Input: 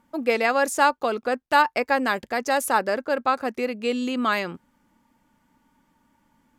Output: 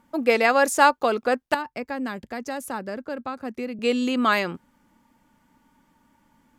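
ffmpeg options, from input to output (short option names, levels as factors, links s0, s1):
-filter_complex "[0:a]asettb=1/sr,asplit=3[s0][s1][s2];[s0]atrim=end=1.544[s3];[s1]atrim=start=1.54:end=3.79,asetpts=PTS-STARTPTS,afade=t=in:d=0.004:c=qsin,afade=t=out:st=2.246:d=0.004:c=qsin,acrossover=split=260[s4][s5];[s5]acompressor=threshold=0.00708:ratio=2[s6];[s4][s6]amix=inputs=2:normalize=0[s7];[s2]atrim=start=3.786[s8];[s3][s7]acrossfade=d=0.004:c1=hsin:c2=qsin[s9];[s9][s8]acrossfade=d=0.004:c1=qsin:c2=hsin,volume=1.33"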